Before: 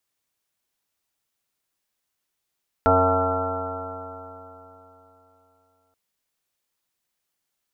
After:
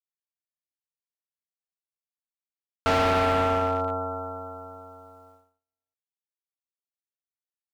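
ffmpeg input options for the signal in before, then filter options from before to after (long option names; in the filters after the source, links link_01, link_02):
-f lavfi -i "aevalsrc='0.0708*pow(10,-3*t/3.44)*sin(2*PI*89.59*t)+0.00891*pow(10,-3*t/3.44)*sin(2*PI*179.75*t)+0.0631*pow(10,-3*t/3.44)*sin(2*PI*271.03*t)+0.00891*pow(10,-3*t/3.44)*sin(2*PI*363.96*t)+0.0891*pow(10,-3*t/3.44)*sin(2*PI*459.1*t)+0.0316*pow(10,-3*t/3.44)*sin(2*PI*556.93*t)+0.112*pow(10,-3*t/3.44)*sin(2*PI*657.94*t)+0.0501*pow(10,-3*t/3.44)*sin(2*PI*762.6*t)+0.075*pow(10,-3*t/3.44)*sin(2*PI*871.32*t)+0.0251*pow(10,-3*t/3.44)*sin(2*PI*984.5*t)+0.02*pow(10,-3*t/3.44)*sin(2*PI*1102.51*t)+0.015*pow(10,-3*t/3.44)*sin(2*PI*1225.68*t)+0.112*pow(10,-3*t/3.44)*sin(2*PI*1354.32*t)':duration=3.08:sample_rate=44100"
-filter_complex "[0:a]agate=range=-37dB:threshold=-58dB:ratio=16:detection=peak,asplit=2[link_01][link_02];[link_02]alimiter=limit=-16.5dB:level=0:latency=1,volume=0dB[link_03];[link_01][link_03]amix=inputs=2:normalize=0,asoftclip=type=hard:threshold=-20dB"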